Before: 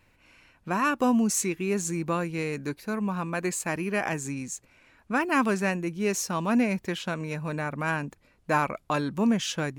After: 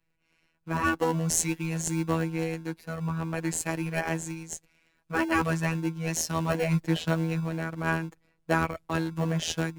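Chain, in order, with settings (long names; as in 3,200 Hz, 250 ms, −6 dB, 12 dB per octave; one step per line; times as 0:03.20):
0:06.49–0:07.44: comb filter 5.9 ms, depth 69%
phases set to zero 163 Hz
in parallel at −8.5 dB: decimation without filtering 36×
on the sum: multiband upward and downward expander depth 40%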